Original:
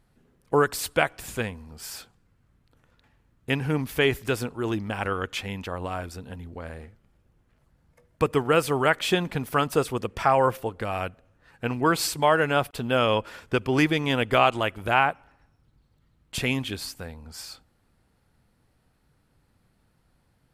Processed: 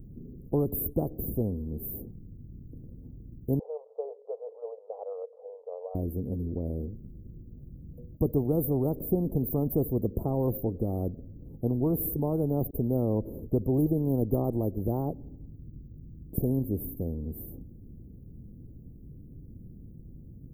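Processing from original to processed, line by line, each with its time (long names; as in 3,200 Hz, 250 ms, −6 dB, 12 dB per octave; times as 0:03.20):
0:03.59–0:05.95: linear-phase brick-wall band-pass 440–1,400 Hz
whole clip: inverse Chebyshev band-stop filter 1,600–5,500 Hz, stop band 80 dB; low-shelf EQ 320 Hz +3 dB; every bin compressed towards the loudest bin 2 to 1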